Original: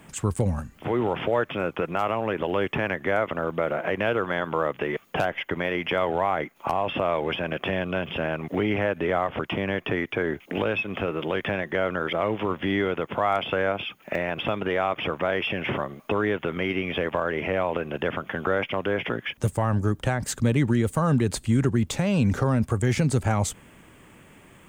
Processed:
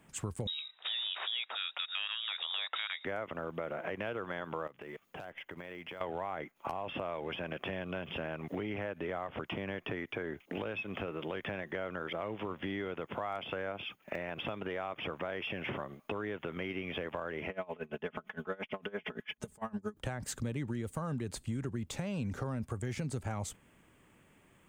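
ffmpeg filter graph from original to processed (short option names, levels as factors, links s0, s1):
-filter_complex "[0:a]asettb=1/sr,asplit=3[s0][s1][s2];[s0]atrim=end=0.474[s3];[s1]atrim=start=0.47:end=3.05,asetpts=PTS-STARTPTS,afade=t=in:d=0.004:c=qsin,afade=t=out:st=2.576:d=0.004:c=qsin,highshelf=f=2000:g=9.5,lowpass=f=3300:t=q:w=0.5098,lowpass=f=3300:t=q:w=0.6013,lowpass=f=3300:t=q:w=0.9,lowpass=f=3300:t=q:w=2.563,afreqshift=-3900[s4];[s2]atrim=start=3.046[s5];[s3][s4]acrossfade=d=0.004:c1=hsin:c2=qsin[s6];[s6][s5]acrossfade=d=0.004:c1=qsin:c2=hsin,asettb=1/sr,asplit=3[s7][s8][s9];[s7]atrim=end=4.674[s10];[s8]atrim=start=4.67:end=6.01,asetpts=PTS-STARTPTS,afade=t=in:d=0.004:c=qsin,afade=t=out:st=1.336:d=0.004:c=qsin,acrusher=bits=8:mode=log:mix=0:aa=0.000001,acompressor=threshold=0.0178:ratio=8:attack=3.2:release=140:knee=1:detection=peak[s11];[s9]atrim=start=6.006[s12];[s10][s11]acrossfade=d=0.004:c1=hsin:c2=qsin[s13];[s13][s12]acrossfade=d=0.004:c1=qsin:c2=hsin,asettb=1/sr,asplit=3[s14][s15][s16];[s14]atrim=end=17.494[s17];[s15]atrim=start=17.49:end=19.97,asetpts=PTS-STARTPTS,afade=t=in:d=0.004:c=qsin,afade=t=out:st=2.476:d=0.004:c=qsin,aecho=1:1:4.7:0.86,atrim=end_sample=109368,aeval=exprs='val(0)*pow(10,-25*(0.5-0.5*cos(2*PI*8.8*n/s))/20)':c=same[s18];[s16]atrim=start=19.966[s19];[s17][s18]acrossfade=d=0.004:c1=hsin:c2=qsin[s20];[s20][s19]acrossfade=d=0.004:c1=qsin:c2=hsin,acompressor=threshold=0.0316:ratio=3,agate=range=0.447:threshold=0.00891:ratio=16:detection=peak,volume=0.501"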